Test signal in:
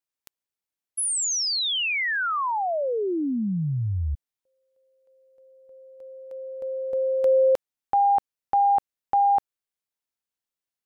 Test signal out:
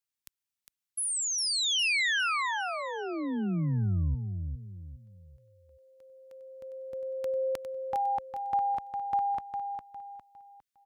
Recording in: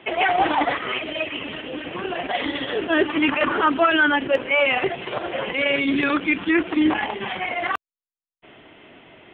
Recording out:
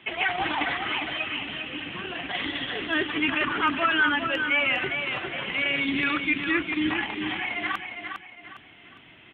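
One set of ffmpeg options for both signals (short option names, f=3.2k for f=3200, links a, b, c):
-filter_complex "[0:a]highpass=f=54:p=1,acrossover=split=2800[a][b];[b]acompressor=threshold=-30dB:ratio=4:attack=1:release=60[c];[a][c]amix=inputs=2:normalize=0,equalizer=f=540:w=0.71:g=-13.5,asplit=2[d][e];[e]aecho=0:1:406|812|1218|1624:0.473|0.166|0.058|0.0203[f];[d][f]amix=inputs=2:normalize=0"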